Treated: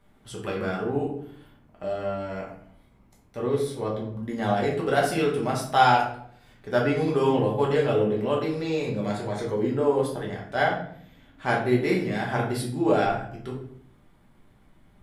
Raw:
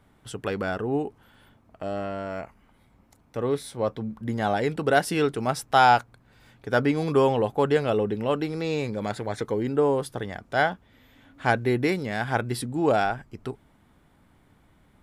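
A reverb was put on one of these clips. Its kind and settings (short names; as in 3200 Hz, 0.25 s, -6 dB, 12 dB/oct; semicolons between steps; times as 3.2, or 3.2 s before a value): shoebox room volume 93 m³, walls mixed, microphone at 1.2 m; gain -5.5 dB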